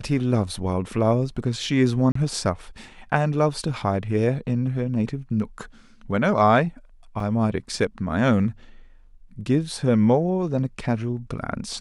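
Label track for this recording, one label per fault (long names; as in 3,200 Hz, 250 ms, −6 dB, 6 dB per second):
2.120000	2.150000	drop-out 34 ms
7.200000	7.200000	drop-out 3.4 ms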